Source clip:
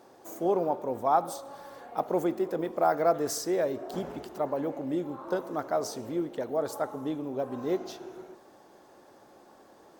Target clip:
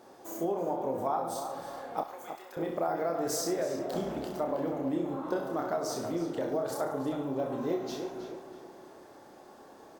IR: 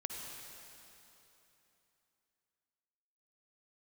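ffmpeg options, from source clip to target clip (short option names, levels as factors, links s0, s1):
-filter_complex "[0:a]asplit=2[s0][s1];[s1]aecho=0:1:30|63|99.3|139.2|183.2:0.631|0.398|0.251|0.158|0.1[s2];[s0][s2]amix=inputs=2:normalize=0,acompressor=threshold=0.0398:ratio=6,asettb=1/sr,asplit=3[s3][s4][s5];[s3]atrim=end=2.034[s6];[s4]atrim=start=2.03:end=2.57,asetpts=PTS-STARTPTS,afade=t=in:d=0.004:c=qsin,afade=t=out:st=0.536:d=0.004:c=qsin,highpass=1400[s7];[s5]atrim=start=2.566[s8];[s6][s7]acrossfade=d=0.004:c1=hsin:c2=qsin[s9];[s9][s8]acrossfade=d=0.004:c1=qsin:c2=hsin,asplit=2[s10][s11];[s11]adelay=319,lowpass=f=3300:p=1,volume=0.376,asplit=2[s12][s13];[s13]adelay=319,lowpass=f=3300:p=1,volume=0.42,asplit=2[s14][s15];[s15]adelay=319,lowpass=f=3300:p=1,volume=0.42,asplit=2[s16][s17];[s17]adelay=319,lowpass=f=3300:p=1,volume=0.42,asplit=2[s18][s19];[s19]adelay=319,lowpass=f=3300:p=1,volume=0.42[s20];[s12][s14][s16][s18][s20]amix=inputs=5:normalize=0[s21];[s10][s21]amix=inputs=2:normalize=0"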